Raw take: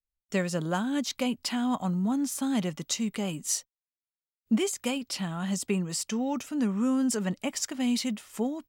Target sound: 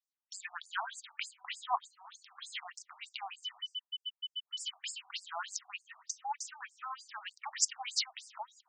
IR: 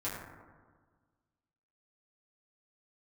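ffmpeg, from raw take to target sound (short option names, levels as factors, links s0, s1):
-filter_complex "[0:a]asettb=1/sr,asplit=3[s0][s1][s2];[s0]atrim=end=3.424[s3];[s1]atrim=start=3.42:end=4.82,asetpts=PTS-STARTPTS,afade=t=in:d=0.004:c=qsin,afade=t=out:st=1.396:d=0.004:c=qsin,aeval=exprs='val(0)+0.0141*sin(2*PI*3000*n/s)':c=same[s4];[s2]atrim=start=4.816[s5];[s3][s4]acrossfade=d=0.004:c1=hsin:c2=qsin[s6];[s6][s5]acrossfade=d=0.004:c1=qsin:c2=hsin,asplit=2[s7][s8];[1:a]atrim=start_sample=2205,afade=t=out:st=0.29:d=0.01,atrim=end_sample=13230[s9];[s8][s9]afir=irnorm=-1:irlink=0,volume=0.0841[s10];[s7][s10]amix=inputs=2:normalize=0,afftfilt=real='re*between(b*sr/1024,900*pow(6800/900,0.5+0.5*sin(2*PI*3.3*pts/sr))/1.41,900*pow(6800/900,0.5+0.5*sin(2*PI*3.3*pts/sr))*1.41)':imag='im*between(b*sr/1024,900*pow(6800/900,0.5+0.5*sin(2*PI*3.3*pts/sr))/1.41,900*pow(6800/900,0.5+0.5*sin(2*PI*3.3*pts/sr))*1.41)':win_size=1024:overlap=0.75,volume=1.41"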